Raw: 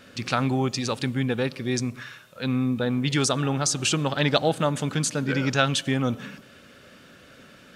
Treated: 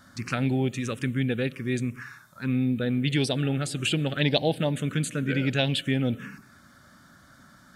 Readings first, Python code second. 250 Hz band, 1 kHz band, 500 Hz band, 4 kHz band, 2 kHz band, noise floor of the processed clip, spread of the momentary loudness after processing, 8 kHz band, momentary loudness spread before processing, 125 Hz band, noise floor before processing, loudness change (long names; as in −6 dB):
−1.0 dB, −8.0 dB, −2.5 dB, −2.5 dB, −2.5 dB, −55 dBFS, 7 LU, −10.5 dB, 6 LU, 0.0 dB, −51 dBFS, −2.0 dB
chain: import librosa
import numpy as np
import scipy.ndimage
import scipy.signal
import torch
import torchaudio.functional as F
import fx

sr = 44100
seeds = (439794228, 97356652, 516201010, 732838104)

y = fx.env_phaser(x, sr, low_hz=440.0, high_hz=1300.0, full_db=-18.5)